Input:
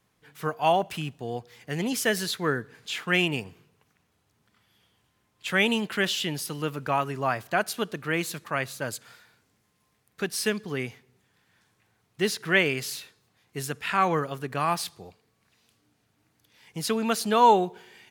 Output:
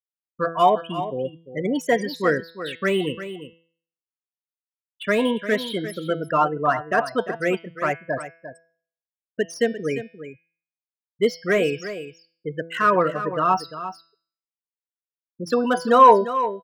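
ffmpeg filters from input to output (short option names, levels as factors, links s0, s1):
-filter_complex "[0:a]afftfilt=real='re*gte(hypot(re,im),0.0631)':imag='im*gte(hypot(re,im),0.0631)':win_size=1024:overlap=0.75,bandreject=f=152.4:t=h:w=4,bandreject=f=304.8:t=h:w=4,bandreject=f=457.2:t=h:w=4,bandreject=f=609.6:t=h:w=4,bandreject=f=762:t=h:w=4,bandreject=f=914.4:t=h:w=4,bandreject=f=1066.8:t=h:w=4,bandreject=f=1219.2:t=h:w=4,bandreject=f=1371.6:t=h:w=4,bandreject=f=1524:t=h:w=4,bandreject=f=1676.4:t=h:w=4,bandreject=f=1828.8:t=h:w=4,bandreject=f=1981.2:t=h:w=4,bandreject=f=2133.6:t=h:w=4,bandreject=f=2286:t=h:w=4,bandreject=f=2438.4:t=h:w=4,bandreject=f=2590.8:t=h:w=4,bandreject=f=2743.2:t=h:w=4,bandreject=f=2895.6:t=h:w=4,bandreject=f=3048:t=h:w=4,bandreject=f=3200.4:t=h:w=4,bandreject=f=3352.8:t=h:w=4,bandreject=f=3505.2:t=h:w=4,bandreject=f=3657.6:t=h:w=4,bandreject=f=3810:t=h:w=4,bandreject=f=3962.4:t=h:w=4,bandreject=f=4114.8:t=h:w=4,bandreject=f=4267.2:t=h:w=4,bandreject=f=4419.6:t=h:w=4,bandreject=f=4572:t=h:w=4,bandreject=f=4724.4:t=h:w=4,bandreject=f=4876.8:t=h:w=4,deesser=0.85,bass=f=250:g=-8,treble=f=4000:g=4,acrossover=split=1400[s0][s1];[s0]acontrast=54[s2];[s1]asoftclip=type=tanh:threshold=0.0178[s3];[s2][s3]amix=inputs=2:normalize=0,aecho=1:1:380:0.251,asetrate=48000,aresample=44100,asuperstop=centerf=820:order=20:qfactor=5.9,volume=1.41"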